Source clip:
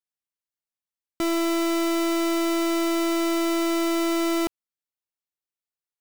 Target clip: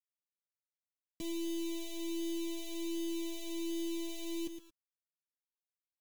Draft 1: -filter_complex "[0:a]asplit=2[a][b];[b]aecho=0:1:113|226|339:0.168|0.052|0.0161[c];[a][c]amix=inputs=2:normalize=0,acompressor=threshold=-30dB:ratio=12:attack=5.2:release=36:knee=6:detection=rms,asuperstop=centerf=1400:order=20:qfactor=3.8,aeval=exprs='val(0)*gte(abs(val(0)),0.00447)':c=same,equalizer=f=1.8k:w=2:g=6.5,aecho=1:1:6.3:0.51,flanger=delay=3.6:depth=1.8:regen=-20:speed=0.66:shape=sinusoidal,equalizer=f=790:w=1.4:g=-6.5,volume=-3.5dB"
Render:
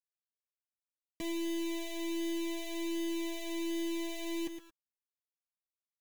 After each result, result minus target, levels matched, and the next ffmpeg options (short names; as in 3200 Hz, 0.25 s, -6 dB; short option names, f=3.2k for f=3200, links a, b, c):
1000 Hz band +6.0 dB; 2000 Hz band +6.0 dB
-filter_complex "[0:a]asplit=2[a][b];[b]aecho=0:1:113|226|339:0.168|0.052|0.0161[c];[a][c]amix=inputs=2:normalize=0,acompressor=threshold=-30dB:ratio=12:attack=5.2:release=36:knee=6:detection=rms,asuperstop=centerf=1400:order=20:qfactor=3.8,aeval=exprs='val(0)*gte(abs(val(0)),0.00447)':c=same,equalizer=f=1.8k:w=2:g=6.5,aecho=1:1:6.3:0.51,flanger=delay=3.6:depth=1.8:regen=-20:speed=0.66:shape=sinusoidal,equalizer=f=790:w=1.4:g=-17,volume=-3.5dB"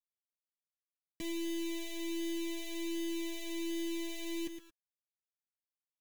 2000 Hz band +6.0 dB
-filter_complex "[0:a]asplit=2[a][b];[b]aecho=0:1:113|226|339:0.168|0.052|0.0161[c];[a][c]amix=inputs=2:normalize=0,acompressor=threshold=-30dB:ratio=12:attack=5.2:release=36:knee=6:detection=rms,asuperstop=centerf=1400:order=20:qfactor=3.8,aeval=exprs='val(0)*gte(abs(val(0)),0.00447)':c=same,equalizer=f=1.8k:w=2:g=-5.5,aecho=1:1:6.3:0.51,flanger=delay=3.6:depth=1.8:regen=-20:speed=0.66:shape=sinusoidal,equalizer=f=790:w=1.4:g=-17,volume=-3.5dB"